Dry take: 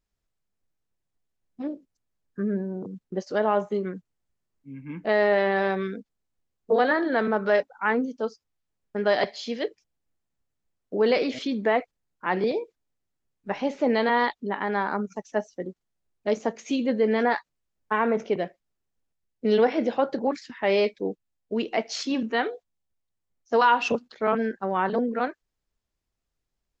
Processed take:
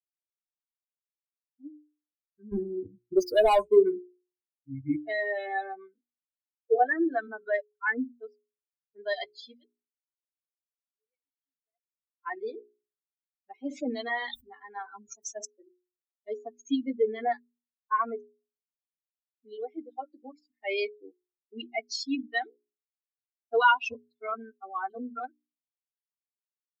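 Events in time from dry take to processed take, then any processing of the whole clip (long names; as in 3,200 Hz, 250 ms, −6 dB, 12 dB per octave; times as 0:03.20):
0:02.52–0:04.96: leveller curve on the samples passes 3
0:05.63–0:07.08: low-pass filter 2,300 Hz
0:09.51–0:12.25: duck −24 dB, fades 0.20 s
0:13.57–0:15.45: level that may fall only so fast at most 64 dB per second
0:18.24–0:20.87: fade in
whole clip: spectral dynamics exaggerated over time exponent 3; mains-hum notches 60/120/180/240/300/360/420 Hz; comb filter 2.8 ms, depth 95%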